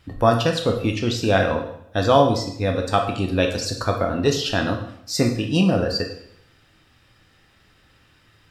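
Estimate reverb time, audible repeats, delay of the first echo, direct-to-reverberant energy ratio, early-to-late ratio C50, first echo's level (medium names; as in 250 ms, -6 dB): 0.70 s, no echo, no echo, 2.0 dB, 7.0 dB, no echo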